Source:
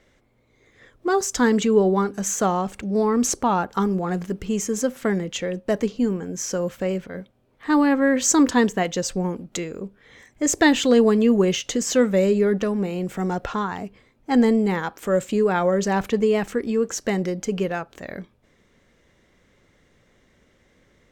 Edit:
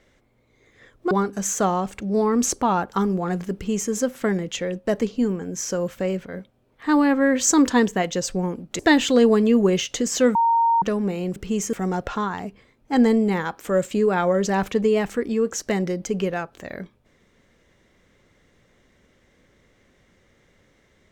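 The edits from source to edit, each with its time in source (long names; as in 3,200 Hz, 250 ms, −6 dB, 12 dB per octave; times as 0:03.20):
0:01.11–0:01.92: remove
0:04.35–0:04.72: duplicate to 0:13.11
0:09.60–0:10.54: remove
0:12.10–0:12.57: beep over 924 Hz −15 dBFS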